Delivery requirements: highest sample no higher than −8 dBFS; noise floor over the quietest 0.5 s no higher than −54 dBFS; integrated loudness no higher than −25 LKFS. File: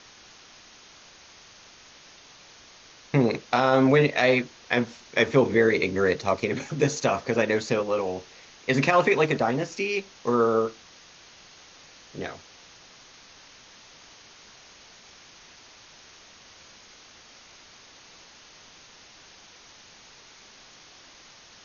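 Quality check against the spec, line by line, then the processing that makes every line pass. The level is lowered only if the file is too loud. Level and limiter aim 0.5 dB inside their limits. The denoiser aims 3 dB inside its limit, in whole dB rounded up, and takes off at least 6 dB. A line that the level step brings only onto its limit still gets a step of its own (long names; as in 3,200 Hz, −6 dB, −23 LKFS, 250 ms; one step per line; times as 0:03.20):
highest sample −6.5 dBFS: out of spec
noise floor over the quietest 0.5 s −51 dBFS: out of spec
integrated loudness −24.0 LKFS: out of spec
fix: broadband denoise 6 dB, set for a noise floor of −51 dBFS
level −1.5 dB
brickwall limiter −8.5 dBFS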